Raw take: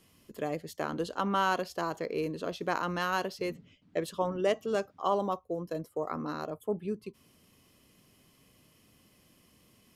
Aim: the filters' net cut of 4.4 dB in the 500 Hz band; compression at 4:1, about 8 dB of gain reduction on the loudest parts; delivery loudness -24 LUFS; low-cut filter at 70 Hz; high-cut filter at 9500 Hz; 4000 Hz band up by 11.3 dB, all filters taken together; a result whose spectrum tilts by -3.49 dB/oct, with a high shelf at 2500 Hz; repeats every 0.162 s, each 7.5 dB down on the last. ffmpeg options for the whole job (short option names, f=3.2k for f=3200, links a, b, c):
-af "highpass=70,lowpass=9.5k,equalizer=f=500:t=o:g=-6,highshelf=f=2.5k:g=7.5,equalizer=f=4k:t=o:g=8.5,acompressor=threshold=-32dB:ratio=4,aecho=1:1:162|324|486|648|810:0.422|0.177|0.0744|0.0312|0.0131,volume=12.5dB"